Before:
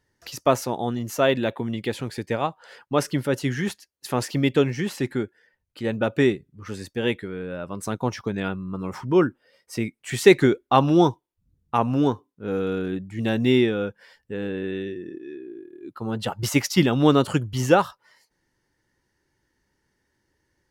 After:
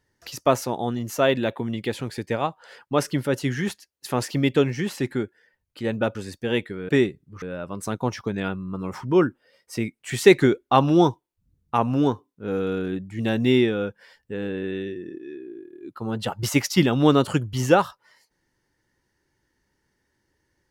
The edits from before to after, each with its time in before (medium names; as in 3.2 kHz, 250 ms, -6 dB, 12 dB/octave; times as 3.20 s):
6.15–6.68 s: move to 7.42 s